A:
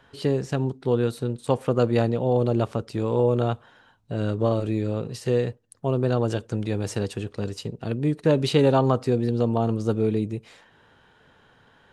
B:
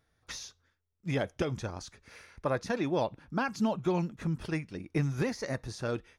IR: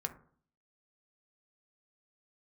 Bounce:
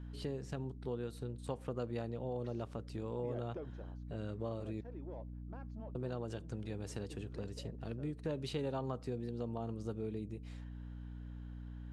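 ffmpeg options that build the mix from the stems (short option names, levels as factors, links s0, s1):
-filter_complex "[0:a]volume=0.266,asplit=3[s0][s1][s2];[s0]atrim=end=4.81,asetpts=PTS-STARTPTS,afade=t=out:st=4.806:d=0.004:c=hsin[s3];[s1]atrim=start=4.81:end=5.95,asetpts=PTS-STARTPTS,volume=0[s4];[s2]atrim=start=5.95,asetpts=PTS-STARTPTS,afade=t=in:d=0.004:c=hsin[s5];[s3][s4][s5]concat=n=3:v=0:a=1[s6];[1:a]aeval=exprs='0.133*(cos(1*acos(clip(val(0)/0.133,-1,1)))-cos(1*PI/2))+0.0168*(cos(5*acos(clip(val(0)/0.133,-1,1)))-cos(5*PI/2))':c=same,bandpass=f=450:t=q:w=1:csg=0,adelay=2150,volume=0.398,afade=t=out:st=3.51:d=0.39:silence=0.281838[s7];[s6][s7]amix=inputs=2:normalize=0,aeval=exprs='val(0)+0.00562*(sin(2*PI*60*n/s)+sin(2*PI*2*60*n/s)/2+sin(2*PI*3*60*n/s)/3+sin(2*PI*4*60*n/s)/4+sin(2*PI*5*60*n/s)/5)':c=same,acompressor=threshold=0.00891:ratio=2"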